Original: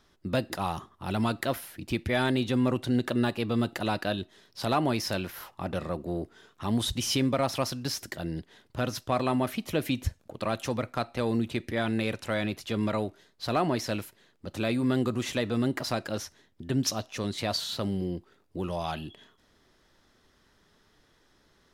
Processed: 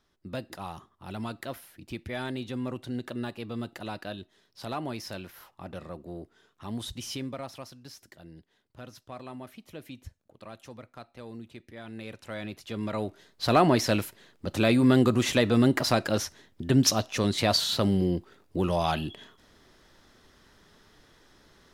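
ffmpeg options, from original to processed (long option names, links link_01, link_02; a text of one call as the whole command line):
ffmpeg -i in.wav -af "volume=13dB,afade=type=out:start_time=7.04:duration=0.65:silence=0.446684,afade=type=in:start_time=11.82:duration=1.08:silence=0.281838,afade=type=in:start_time=12.9:duration=0.61:silence=0.316228" out.wav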